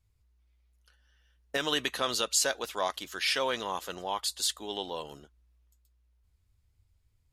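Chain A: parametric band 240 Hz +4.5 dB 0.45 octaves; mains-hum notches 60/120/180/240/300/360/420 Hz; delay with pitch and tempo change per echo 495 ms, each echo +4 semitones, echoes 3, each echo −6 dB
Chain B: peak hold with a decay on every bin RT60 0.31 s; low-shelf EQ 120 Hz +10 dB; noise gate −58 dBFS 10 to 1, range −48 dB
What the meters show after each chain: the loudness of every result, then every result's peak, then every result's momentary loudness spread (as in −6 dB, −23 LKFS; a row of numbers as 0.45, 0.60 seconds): −29.5, −29.0 LKFS; −11.5, −13.0 dBFS; 11, 10 LU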